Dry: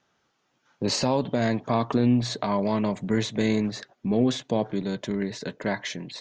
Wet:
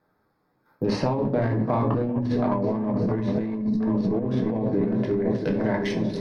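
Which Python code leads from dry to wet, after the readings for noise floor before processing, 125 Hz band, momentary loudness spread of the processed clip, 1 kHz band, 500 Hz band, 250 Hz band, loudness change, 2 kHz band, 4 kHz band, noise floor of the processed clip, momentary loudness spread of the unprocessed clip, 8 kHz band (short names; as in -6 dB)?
-73 dBFS, +3.0 dB, 2 LU, -0.5 dB, +2.0 dB, +2.0 dB, +1.5 dB, -3.0 dB, n/a, -70 dBFS, 9 LU, under -10 dB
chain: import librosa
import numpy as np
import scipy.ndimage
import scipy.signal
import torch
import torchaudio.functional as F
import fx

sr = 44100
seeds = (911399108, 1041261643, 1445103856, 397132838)

p1 = fx.wiener(x, sr, points=15)
p2 = np.repeat(scipy.signal.resample_poly(p1, 1, 3), 3)[:len(p1)]
p3 = fx.peak_eq(p2, sr, hz=5400.0, db=8.5, octaves=0.5)
p4 = fx.echo_opening(p3, sr, ms=345, hz=400, octaves=1, feedback_pct=70, wet_db=-6)
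p5 = fx.env_lowpass_down(p4, sr, base_hz=1900.0, full_db=-22.5)
p6 = fx.spec_box(p5, sr, start_s=3.59, length_s=0.21, low_hz=310.0, high_hz=3700.0, gain_db=-19)
p7 = fx.level_steps(p6, sr, step_db=10)
p8 = p6 + (p7 * 10.0 ** (-2.5 / 20.0))
p9 = fx.room_shoebox(p8, sr, seeds[0], volume_m3=38.0, walls='mixed', distance_m=0.5)
p10 = fx.over_compress(p9, sr, threshold_db=-20.0, ratio=-1.0)
y = p10 * 10.0 ** (-3.5 / 20.0)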